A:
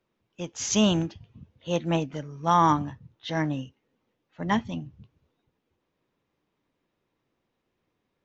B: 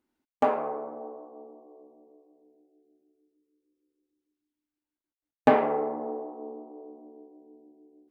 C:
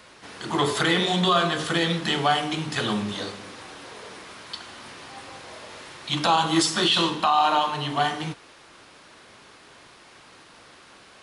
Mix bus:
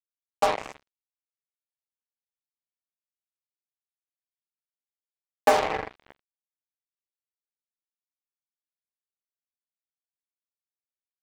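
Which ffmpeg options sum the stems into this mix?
ffmpeg -i stem1.wav -i stem2.wav -filter_complex "[0:a]alimiter=limit=-20.5dB:level=0:latency=1,volume=-19.5dB[link_01];[1:a]volume=2.5dB[link_02];[link_01][link_02]amix=inputs=2:normalize=0,highpass=550,acrusher=bits=3:mix=0:aa=0.5" out.wav

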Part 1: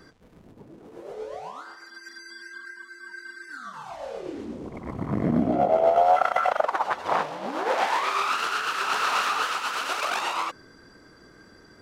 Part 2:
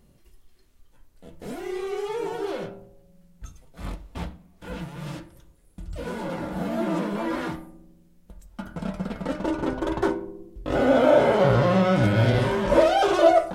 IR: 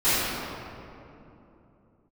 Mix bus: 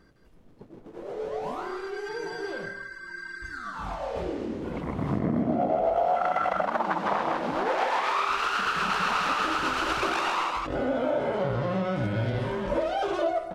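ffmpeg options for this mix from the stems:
-filter_complex "[0:a]agate=range=-11dB:threshold=-46dB:ratio=16:detection=peak,volume=2dB,asplit=2[link_01][link_02];[link_02]volume=-3.5dB[link_03];[1:a]volume=-5.5dB,asplit=2[link_04][link_05];[link_05]volume=-17dB[link_06];[link_03][link_06]amix=inputs=2:normalize=0,aecho=0:1:159:1[link_07];[link_01][link_04][link_07]amix=inputs=3:normalize=0,highshelf=frequency=6500:gain=-10.5,acompressor=threshold=-24dB:ratio=3"

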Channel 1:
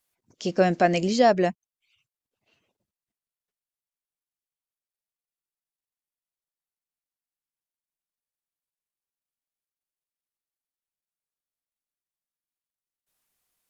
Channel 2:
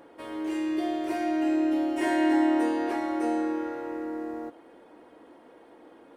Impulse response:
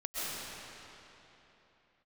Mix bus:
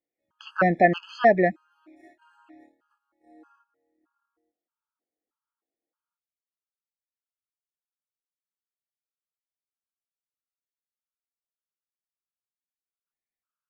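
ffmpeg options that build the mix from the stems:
-filter_complex "[0:a]lowpass=frequency=2000:width_type=q:width=1.7,volume=1dB[link_01];[1:a]acompressor=threshold=-29dB:ratio=2,flanger=delay=17.5:depth=5.7:speed=0.34,volume=-19.5dB[link_02];[link_01][link_02]amix=inputs=2:normalize=0,agate=range=-19dB:threshold=-52dB:ratio=16:detection=peak,equalizer=frequency=1300:width=4.1:gain=14.5,afftfilt=real='re*gt(sin(2*PI*1.6*pts/sr)*(1-2*mod(floor(b*sr/1024/840),2)),0)':imag='im*gt(sin(2*PI*1.6*pts/sr)*(1-2*mod(floor(b*sr/1024/840),2)),0)':win_size=1024:overlap=0.75"

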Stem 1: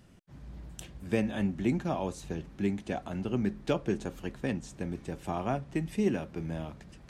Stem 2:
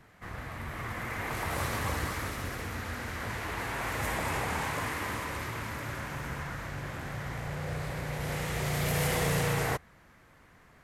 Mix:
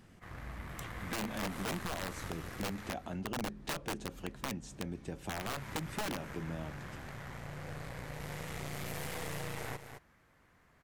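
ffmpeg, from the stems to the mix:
ffmpeg -i stem1.wav -i stem2.wav -filter_complex "[0:a]aeval=exprs='(mod(15*val(0)+1,2)-1)/15':channel_layout=same,volume=-1.5dB[link_01];[1:a]aeval=exprs='0.133*(cos(1*acos(clip(val(0)/0.133,-1,1)))-cos(1*PI/2))+0.0335*(cos(4*acos(clip(val(0)/0.133,-1,1)))-cos(4*PI/2))':channel_layout=same,volume=-8.5dB,asplit=3[link_02][link_03][link_04];[link_02]atrim=end=2.92,asetpts=PTS-STARTPTS,afade=type=out:start_time=2.916:duration=0.004:curve=hsin[link_05];[link_03]atrim=start=2.92:end=5.37,asetpts=PTS-STARTPTS,volume=0[link_06];[link_04]atrim=start=5.37,asetpts=PTS-STARTPTS,afade=type=in:duration=0.004:curve=hsin[link_07];[link_05][link_06][link_07]concat=n=3:v=0:a=1,asplit=2[link_08][link_09];[link_09]volume=-12.5dB,aecho=0:1:215:1[link_10];[link_01][link_08][link_10]amix=inputs=3:normalize=0,acompressor=threshold=-37dB:ratio=2.5" out.wav

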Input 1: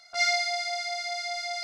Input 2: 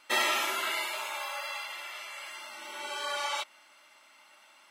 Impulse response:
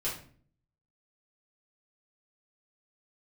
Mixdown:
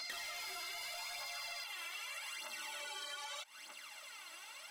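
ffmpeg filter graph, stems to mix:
-filter_complex "[0:a]acompressor=threshold=-41dB:ratio=3,flanger=delay=17.5:depth=5.5:speed=1.5,asplit=2[link_01][link_02];[link_02]highpass=frequency=720:poles=1,volume=26dB,asoftclip=type=tanh:threshold=-24.5dB[link_03];[link_01][link_03]amix=inputs=2:normalize=0,lowpass=frequency=7000:poles=1,volume=-6dB,volume=-9.5dB[link_04];[1:a]aphaser=in_gain=1:out_gain=1:delay=3.1:decay=0.61:speed=0.81:type=triangular,acompressor=threshold=-38dB:ratio=6,volume=-0.5dB[link_05];[link_04][link_05]amix=inputs=2:normalize=0,asoftclip=type=tanh:threshold=-31dB,highshelf=frequency=2200:gain=9,acompressor=threshold=-43dB:ratio=6"

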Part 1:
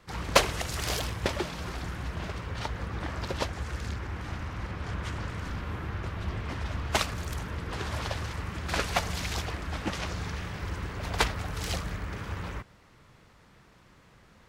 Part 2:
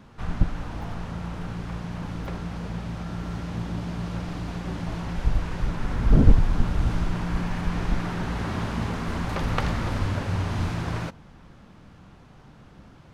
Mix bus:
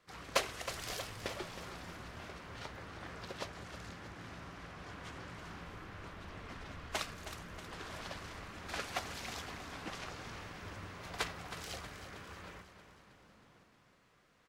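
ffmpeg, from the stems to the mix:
ffmpeg -i stem1.wav -i stem2.wav -filter_complex "[0:a]bandreject=frequency=890:width=12,flanger=delay=6.4:depth=7:regen=80:speed=0.21:shape=triangular,volume=-5.5dB,asplit=2[link_01][link_02];[link_02]volume=-11dB[link_03];[1:a]acompressor=threshold=-32dB:ratio=6,adelay=500,volume=-12.5dB,asplit=2[link_04][link_05];[link_05]volume=-6dB[link_06];[link_03][link_06]amix=inputs=2:normalize=0,aecho=0:1:317|634|951|1268|1585|1902|2219|2536:1|0.55|0.303|0.166|0.0915|0.0503|0.0277|0.0152[link_07];[link_01][link_04][link_07]amix=inputs=3:normalize=0,lowshelf=frequency=180:gain=-11.5" out.wav

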